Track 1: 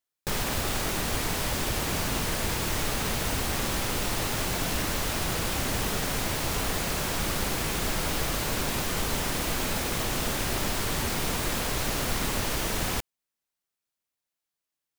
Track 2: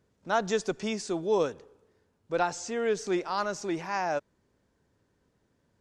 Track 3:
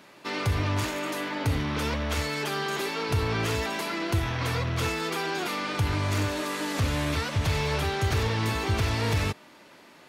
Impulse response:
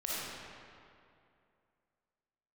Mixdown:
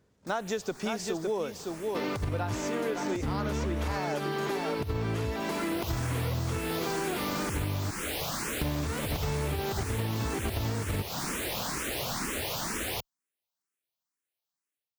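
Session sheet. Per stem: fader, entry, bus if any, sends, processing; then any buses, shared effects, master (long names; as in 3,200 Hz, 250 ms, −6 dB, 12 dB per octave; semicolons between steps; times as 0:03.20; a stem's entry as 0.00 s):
−10.0 dB, 0.00 s, no send, no echo send, high-pass filter 130 Hz 6 dB per octave; automatic gain control gain up to 10.5 dB; frequency shifter mixed with the dry sound +2.1 Hz; automatic ducking −15 dB, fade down 0.65 s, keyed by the second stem
+2.5 dB, 0.00 s, no send, echo send −7.5 dB, no processing
+1.0 dB, 1.70 s, muted 0:07.91–0:08.61, no send, no echo send, tilt shelving filter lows +5.5 dB, about 850 Hz; compressor whose output falls as the input rises −23 dBFS, ratio −0.5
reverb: not used
echo: single-tap delay 560 ms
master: downward compressor, threshold −28 dBFS, peak gain reduction 11 dB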